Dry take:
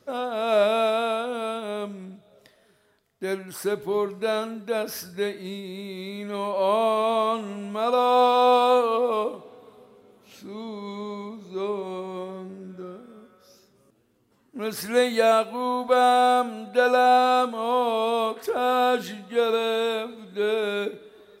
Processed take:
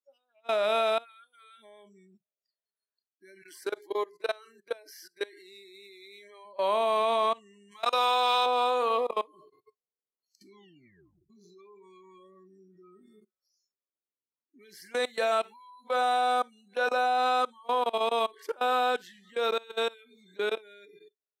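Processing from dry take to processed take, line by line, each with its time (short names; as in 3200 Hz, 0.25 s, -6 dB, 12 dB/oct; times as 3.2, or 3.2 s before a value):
3.42–6.45 Chebyshev high-pass 300 Hz, order 3
7.71–8.46 tilt shelf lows -7.5 dB, about 940 Hz
10.54 tape stop 0.76 s
12.91–16.66 feedback echo 94 ms, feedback 53%, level -22.5 dB
whole clip: level quantiser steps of 24 dB; spectral noise reduction 30 dB; weighting filter A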